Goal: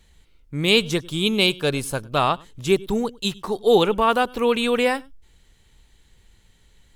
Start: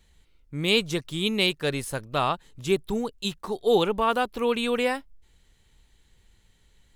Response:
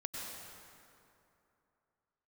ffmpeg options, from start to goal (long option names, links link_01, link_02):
-filter_complex "[0:a]asettb=1/sr,asplit=3[link_01][link_02][link_03];[link_01]atrim=end=1.014[link_04];[link_02]atrim=start=1.01:end=2.17,asetpts=PTS-STARTPTS,afade=type=in:duration=0.004:curve=qsin,afade=type=out:start_time=1.156:duration=0.004:curve=qsin,bandreject=frequency=1900:width=5.1[link_05];[link_03]atrim=start=2.166[link_06];[link_04][link_05]acrossfade=duration=0.004:curve1=hsin:curve2=qsin[link_07];[link_07][link_06]acrossfade=duration=0.004:curve1=qsin:curve2=hsin[link_08];[1:a]atrim=start_sample=2205,atrim=end_sample=3969,asetrate=39249,aresample=44100[link_09];[link_08][link_09]afir=irnorm=-1:irlink=0,volume=8dB"